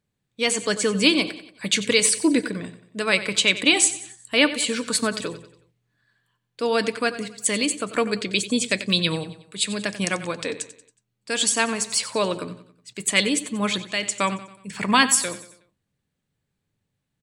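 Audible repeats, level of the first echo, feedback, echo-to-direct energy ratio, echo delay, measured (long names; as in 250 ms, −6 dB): 4, −14.5 dB, 46%, −13.5 dB, 92 ms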